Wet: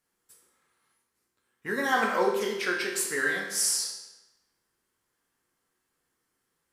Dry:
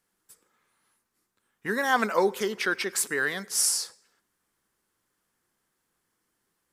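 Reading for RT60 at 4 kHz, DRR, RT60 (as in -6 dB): 0.90 s, -1.5 dB, 0.95 s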